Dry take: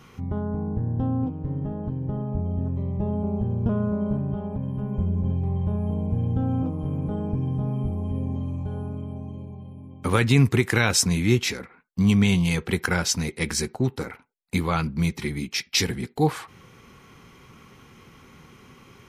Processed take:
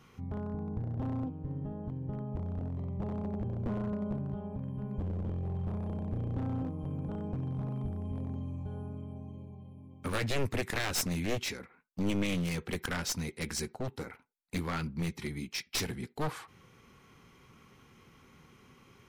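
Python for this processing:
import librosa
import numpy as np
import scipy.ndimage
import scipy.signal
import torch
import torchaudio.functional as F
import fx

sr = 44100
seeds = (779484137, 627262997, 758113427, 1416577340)

y = np.minimum(x, 2.0 * 10.0 ** (-20.0 / 20.0) - x)
y = y * librosa.db_to_amplitude(-9.0)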